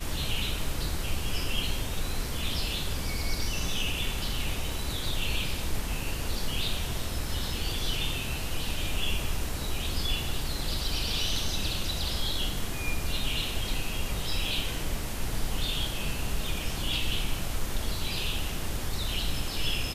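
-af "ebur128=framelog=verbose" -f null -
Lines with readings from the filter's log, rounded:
Integrated loudness:
  I:         -31.6 LUFS
  Threshold: -41.5 LUFS
Loudness range:
  LRA:         1.6 LU
  Threshold: -51.5 LUFS
  LRA low:   -32.1 LUFS
  LRA high:  -30.5 LUFS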